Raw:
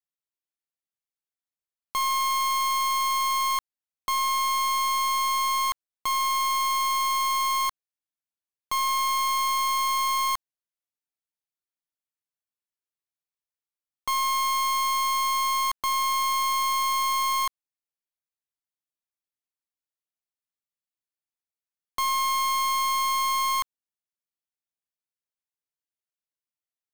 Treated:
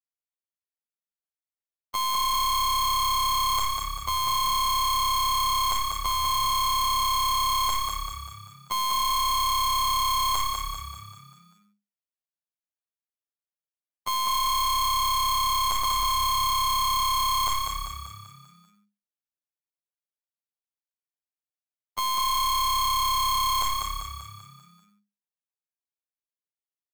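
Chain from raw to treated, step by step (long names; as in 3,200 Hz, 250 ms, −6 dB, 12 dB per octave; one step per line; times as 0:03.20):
parametric band 620 Hz +7 dB
four-comb reverb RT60 0.4 s, combs from 31 ms, DRR 10 dB
leveller curve on the samples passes 5
phases set to zero 104 Hz
echo with shifted repeats 195 ms, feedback 50%, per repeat +34 Hz, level −4 dB
level −2 dB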